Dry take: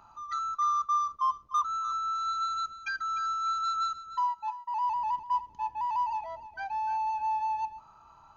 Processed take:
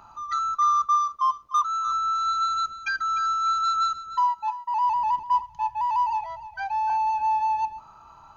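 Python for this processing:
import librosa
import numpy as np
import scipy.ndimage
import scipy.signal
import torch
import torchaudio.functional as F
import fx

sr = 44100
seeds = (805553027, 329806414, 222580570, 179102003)

y = fx.low_shelf(x, sr, hz=440.0, db=-10.5, at=(0.95, 1.86))
y = fx.cheby1_bandstop(y, sr, low_hz=160.0, high_hz=760.0, order=3, at=(5.42, 6.9))
y = y * librosa.db_to_amplitude(6.5)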